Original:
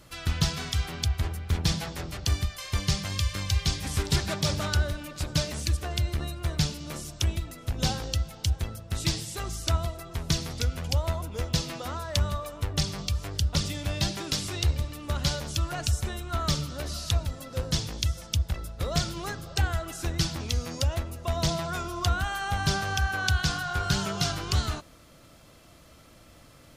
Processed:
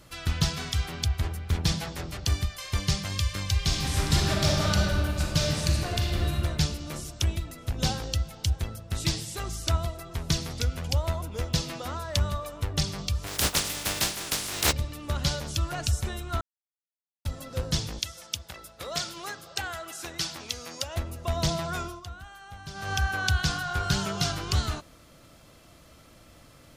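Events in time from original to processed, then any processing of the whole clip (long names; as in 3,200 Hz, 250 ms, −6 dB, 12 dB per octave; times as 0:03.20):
0:03.57–0:06.36: thrown reverb, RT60 2.3 s, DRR −1.5 dB
0:13.26–0:14.71: compressing power law on the bin magnitudes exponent 0.3
0:16.41–0:17.25: silence
0:17.99–0:20.96: high-pass filter 660 Hz 6 dB per octave
0:21.83–0:22.93: duck −15.5 dB, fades 0.19 s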